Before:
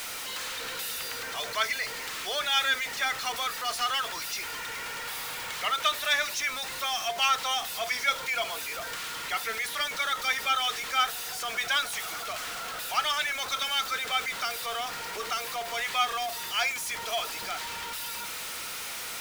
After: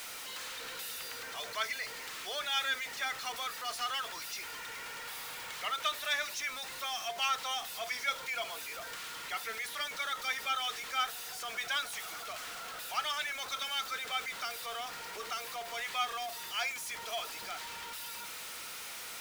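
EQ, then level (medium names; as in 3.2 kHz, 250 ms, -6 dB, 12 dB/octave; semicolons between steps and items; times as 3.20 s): bass shelf 140 Hz -3.5 dB; -7.0 dB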